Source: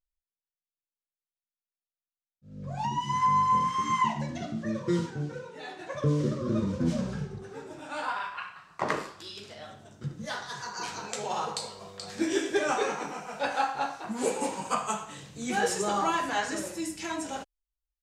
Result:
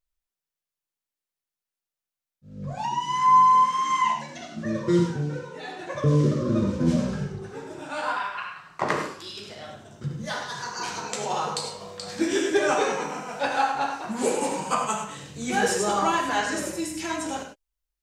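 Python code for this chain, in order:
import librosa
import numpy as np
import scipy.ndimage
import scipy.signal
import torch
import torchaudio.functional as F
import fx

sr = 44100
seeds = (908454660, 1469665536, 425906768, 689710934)

y = fx.highpass(x, sr, hz=fx.line((2.73, 460.0), (4.56, 1200.0)), slope=6, at=(2.73, 4.56), fade=0.02)
y = fx.rev_gated(y, sr, seeds[0], gate_ms=120, shape='rising', drr_db=5.5)
y = y * librosa.db_to_amplitude(3.5)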